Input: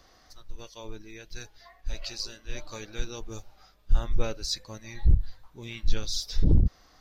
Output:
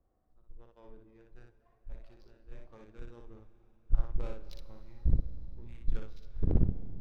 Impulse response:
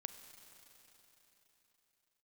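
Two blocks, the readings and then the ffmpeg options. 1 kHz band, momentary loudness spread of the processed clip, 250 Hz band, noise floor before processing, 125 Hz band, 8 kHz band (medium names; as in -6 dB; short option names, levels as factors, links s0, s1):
-11.0 dB, 22 LU, -5.0 dB, -60 dBFS, -6.5 dB, no reading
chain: -filter_complex "[0:a]aemphasis=mode=reproduction:type=50kf,adynamicsmooth=sensitivity=5.5:basefreq=520,aeval=exprs='0.376*(cos(1*acos(clip(val(0)/0.376,-1,1)))-cos(1*PI/2))+0.0944*(cos(2*acos(clip(val(0)/0.376,-1,1)))-cos(2*PI/2))+0.0944*(cos(3*acos(clip(val(0)/0.376,-1,1)))-cos(3*PI/2))+0.0133*(cos(5*acos(clip(val(0)/0.376,-1,1)))-cos(5*PI/2))':c=same,asplit=2[s0][s1];[1:a]atrim=start_sample=2205,adelay=59[s2];[s1][s2]afir=irnorm=-1:irlink=0,volume=1.12[s3];[s0][s3]amix=inputs=2:normalize=0,volume=0.531"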